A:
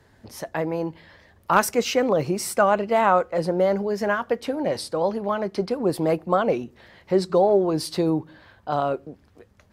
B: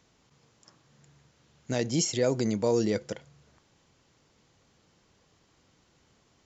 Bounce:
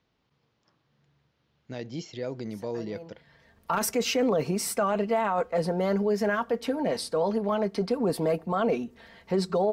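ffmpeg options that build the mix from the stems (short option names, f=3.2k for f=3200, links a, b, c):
-filter_complex "[0:a]aecho=1:1:4.4:0.56,adelay=2200,volume=-2.5dB[a];[1:a]lowpass=f=4.6k:w=0.5412,lowpass=f=4.6k:w=1.3066,volume=-8dB,asplit=2[b][c];[c]apad=whole_len=526226[d];[a][d]sidechaincompress=threshold=-47dB:ratio=8:attack=16:release=631[e];[e][b]amix=inputs=2:normalize=0,alimiter=limit=-17dB:level=0:latency=1:release=13"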